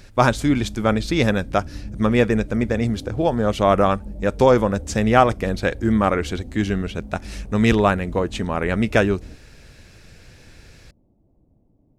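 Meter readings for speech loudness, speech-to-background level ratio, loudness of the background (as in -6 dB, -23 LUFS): -20.5 LUFS, 16.5 dB, -37.0 LUFS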